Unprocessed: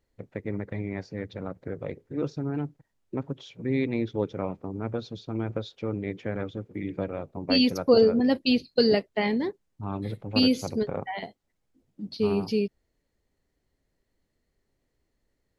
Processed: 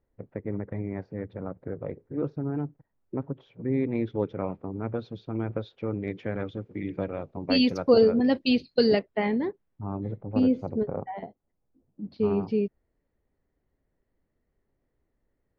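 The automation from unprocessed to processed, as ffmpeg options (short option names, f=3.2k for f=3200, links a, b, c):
-af "asetnsamples=n=441:p=0,asendcmd='3.95 lowpass f 2500;6.08 lowpass f 4300;8.99 lowpass f 2100;9.83 lowpass f 1000;12.05 lowpass f 1700',lowpass=1.4k"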